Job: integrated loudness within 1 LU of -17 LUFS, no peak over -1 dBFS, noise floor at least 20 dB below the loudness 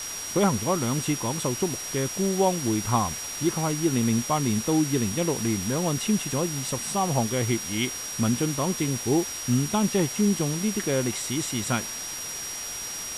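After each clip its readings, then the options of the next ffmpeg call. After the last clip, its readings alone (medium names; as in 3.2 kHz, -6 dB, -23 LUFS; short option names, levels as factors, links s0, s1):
steady tone 5.7 kHz; tone level -34 dBFS; noise floor -34 dBFS; noise floor target -46 dBFS; loudness -25.5 LUFS; peak level -8.0 dBFS; loudness target -17.0 LUFS
-> -af "bandreject=f=5700:w=30"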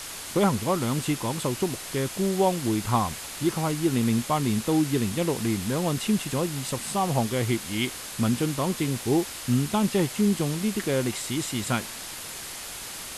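steady tone not found; noise floor -38 dBFS; noise floor target -47 dBFS
-> -af "afftdn=nr=9:nf=-38"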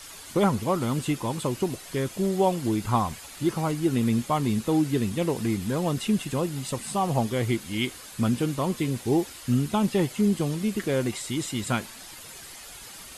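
noise floor -44 dBFS; noise floor target -47 dBFS
-> -af "afftdn=nr=6:nf=-44"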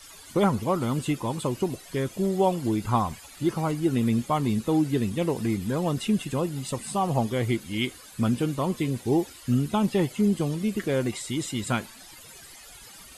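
noise floor -47 dBFS; loudness -26.5 LUFS; peak level -8.5 dBFS; loudness target -17.0 LUFS
-> -af "volume=2.99,alimiter=limit=0.891:level=0:latency=1"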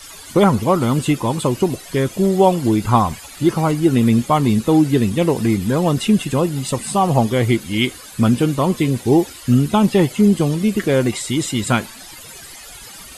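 loudness -17.0 LUFS; peak level -1.0 dBFS; noise floor -38 dBFS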